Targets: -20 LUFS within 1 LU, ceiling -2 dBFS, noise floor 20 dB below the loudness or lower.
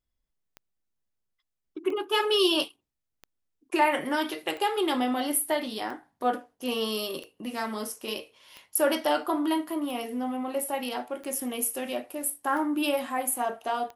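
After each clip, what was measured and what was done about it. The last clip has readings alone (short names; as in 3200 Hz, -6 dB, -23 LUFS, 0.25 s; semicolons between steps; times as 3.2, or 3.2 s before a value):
clicks 11; loudness -28.5 LUFS; peak -11.0 dBFS; loudness target -20.0 LUFS
-> de-click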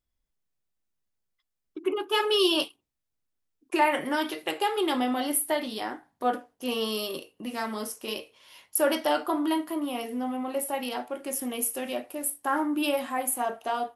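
clicks 0; loudness -28.5 LUFS; peak -11.0 dBFS; loudness target -20.0 LUFS
-> gain +8.5 dB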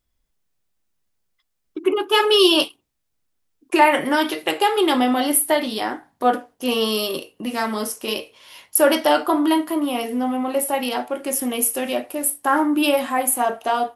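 loudness -20.0 LUFS; peak -2.5 dBFS; noise floor -73 dBFS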